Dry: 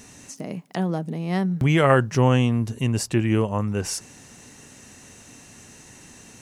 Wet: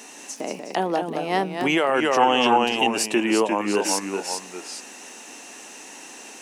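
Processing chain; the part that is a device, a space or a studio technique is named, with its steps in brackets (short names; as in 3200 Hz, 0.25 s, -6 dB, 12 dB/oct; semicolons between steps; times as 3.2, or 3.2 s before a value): echoes that change speed 0.164 s, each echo -1 st, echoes 2, each echo -6 dB; laptop speaker (HPF 280 Hz 24 dB/oct; bell 840 Hz +6 dB 0.53 oct; bell 2800 Hz +5 dB 0.31 oct; limiter -15 dBFS, peak gain reduction 12.5 dB); 2.17–2.88 thirty-one-band EQ 800 Hz +8 dB, 3150 Hz +8 dB, 10000 Hz -4 dB; gain +4.5 dB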